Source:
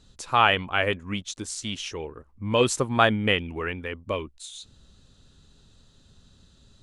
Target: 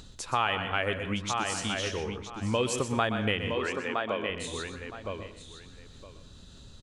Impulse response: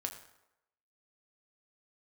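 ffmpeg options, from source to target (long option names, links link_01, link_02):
-filter_complex "[0:a]asplit=2[link_01][link_02];[link_02]adelay=965,lowpass=frequency=3700:poles=1,volume=-8dB,asplit=2[link_03][link_04];[link_04]adelay=965,lowpass=frequency=3700:poles=1,volume=0.15[link_05];[link_01][link_03][link_05]amix=inputs=3:normalize=0,acompressor=mode=upward:threshold=-42dB:ratio=2.5,asettb=1/sr,asplit=3[link_06][link_07][link_08];[link_06]atrim=end=3.524[link_09];[link_07]atrim=start=3.52:end=4.3,asetpts=PTS-STARTPTS,afade=type=in:duration=0.004:curve=qsin,afade=type=out:start_time=0.776:duration=0.004:curve=qsin,highpass=250,lowpass=7300[link_10];[link_08]atrim=start=4.296[link_11];[link_09][link_10]acrossfade=duration=0.004:curve1=hsin:curve2=qsin[link_12];[link_12][link_11]acrossfade=duration=0.004:curve1=qsin:curve2=hsin,asplit=2[link_13][link_14];[1:a]atrim=start_sample=2205,adelay=123[link_15];[link_14][link_15]afir=irnorm=-1:irlink=0,volume=-9dB[link_16];[link_13][link_16]amix=inputs=2:normalize=0,acompressor=threshold=-27dB:ratio=2.5"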